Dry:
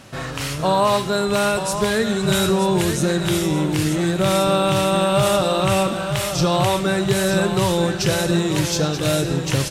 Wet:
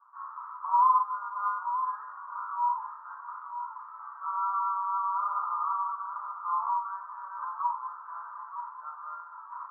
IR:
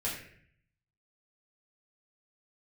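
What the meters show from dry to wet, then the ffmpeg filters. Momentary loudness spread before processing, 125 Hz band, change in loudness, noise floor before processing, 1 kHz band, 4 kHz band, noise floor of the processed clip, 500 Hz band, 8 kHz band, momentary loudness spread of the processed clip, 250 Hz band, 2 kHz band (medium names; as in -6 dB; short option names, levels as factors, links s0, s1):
3 LU, under -40 dB, -12.0 dB, -27 dBFS, -3.5 dB, under -40 dB, -46 dBFS, under -40 dB, under -40 dB, 14 LU, under -40 dB, -23.0 dB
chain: -filter_complex "[0:a]asuperpass=centerf=1100:order=8:qfactor=2.9[s0];[1:a]atrim=start_sample=2205[s1];[s0][s1]afir=irnorm=-1:irlink=0,volume=0.596"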